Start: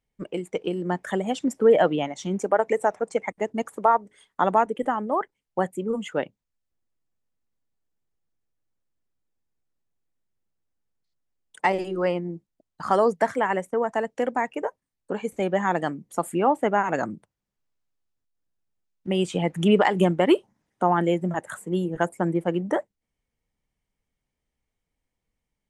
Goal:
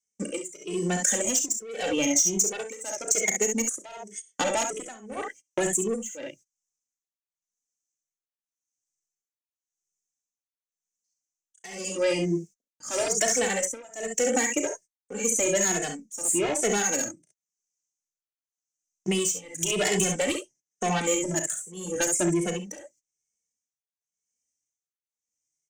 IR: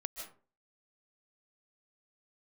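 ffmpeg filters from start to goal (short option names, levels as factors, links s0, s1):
-filter_complex "[0:a]acrossover=split=560|5600[s0][s1][s2];[s0]alimiter=limit=0.0841:level=0:latency=1:release=18[s3];[s3][s1][s2]amix=inputs=3:normalize=0,firequalizer=gain_entry='entry(170,0);entry(510,-5);entry(1000,-22);entry(1500,-12);entry(3900,-23);entry(6100,7);entry(11000,-14)':delay=0.05:min_phase=1,aecho=1:1:35|53|67:0.335|0.251|0.447,agate=range=0.0631:threshold=0.00282:ratio=16:detection=peak,asplit=2[s4][s5];[s5]highpass=f=720:p=1,volume=22.4,asoftclip=type=tanh:threshold=0.562[s6];[s4][s6]amix=inputs=2:normalize=0,lowpass=f=4200:p=1,volume=0.501,aexciter=amount=3.5:drive=9:freq=2100,tremolo=f=0.9:d=0.95,acompressor=threshold=0.1:ratio=5,highshelf=f=7700:g=4,asplit=2[s7][s8];[s8]adelay=2.3,afreqshift=1.2[s9];[s7][s9]amix=inputs=2:normalize=1"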